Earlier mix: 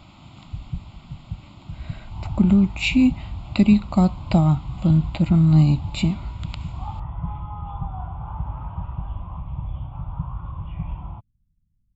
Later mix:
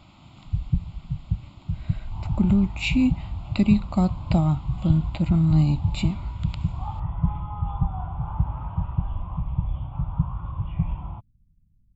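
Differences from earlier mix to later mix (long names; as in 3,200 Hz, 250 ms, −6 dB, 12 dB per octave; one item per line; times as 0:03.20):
speech −4.0 dB
first sound +7.0 dB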